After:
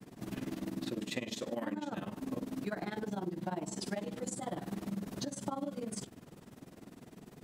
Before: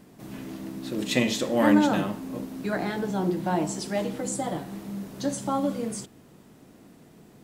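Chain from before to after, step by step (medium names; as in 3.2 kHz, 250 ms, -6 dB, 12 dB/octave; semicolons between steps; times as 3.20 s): compression 16:1, threshold -34 dBFS, peak gain reduction 20.5 dB; granulator 61 ms, spray 10 ms, pitch spread up and down by 0 st; trim +2.5 dB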